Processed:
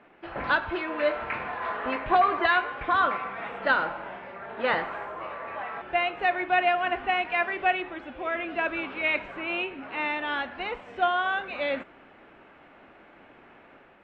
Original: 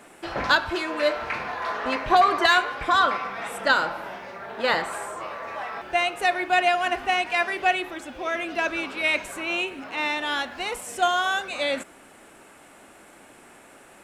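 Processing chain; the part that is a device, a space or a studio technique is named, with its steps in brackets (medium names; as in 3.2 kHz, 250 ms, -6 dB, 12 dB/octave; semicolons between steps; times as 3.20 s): action camera in a waterproof case (low-pass 2.9 kHz 24 dB/octave; level rider gain up to 4.5 dB; trim -6.5 dB; AAC 48 kbps 24 kHz)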